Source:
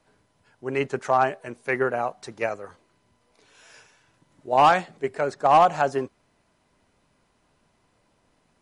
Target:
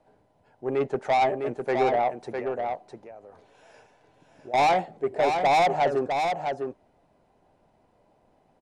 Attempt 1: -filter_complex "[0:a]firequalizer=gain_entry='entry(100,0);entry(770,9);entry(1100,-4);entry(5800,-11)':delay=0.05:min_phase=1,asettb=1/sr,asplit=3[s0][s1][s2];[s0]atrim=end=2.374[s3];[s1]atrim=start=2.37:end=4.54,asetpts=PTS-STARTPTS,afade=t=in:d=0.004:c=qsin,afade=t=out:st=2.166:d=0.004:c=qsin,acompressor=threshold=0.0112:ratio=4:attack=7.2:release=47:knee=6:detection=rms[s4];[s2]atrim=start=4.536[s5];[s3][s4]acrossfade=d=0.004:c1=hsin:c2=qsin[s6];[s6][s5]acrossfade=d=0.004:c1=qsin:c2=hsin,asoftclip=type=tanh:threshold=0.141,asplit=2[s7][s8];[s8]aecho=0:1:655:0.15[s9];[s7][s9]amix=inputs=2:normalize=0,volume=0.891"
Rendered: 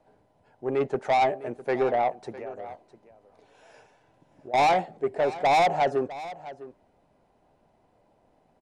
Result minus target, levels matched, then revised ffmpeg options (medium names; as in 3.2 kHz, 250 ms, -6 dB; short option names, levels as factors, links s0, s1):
echo-to-direct -11 dB
-filter_complex "[0:a]firequalizer=gain_entry='entry(100,0);entry(770,9);entry(1100,-4);entry(5800,-11)':delay=0.05:min_phase=1,asettb=1/sr,asplit=3[s0][s1][s2];[s0]atrim=end=2.374[s3];[s1]atrim=start=2.37:end=4.54,asetpts=PTS-STARTPTS,afade=t=in:d=0.004:c=qsin,afade=t=out:st=2.166:d=0.004:c=qsin,acompressor=threshold=0.0112:ratio=4:attack=7.2:release=47:knee=6:detection=rms[s4];[s2]atrim=start=4.536[s5];[s3][s4]acrossfade=d=0.004:c1=hsin:c2=qsin[s6];[s6][s5]acrossfade=d=0.004:c1=qsin:c2=hsin,asoftclip=type=tanh:threshold=0.141,asplit=2[s7][s8];[s8]aecho=0:1:655:0.531[s9];[s7][s9]amix=inputs=2:normalize=0,volume=0.891"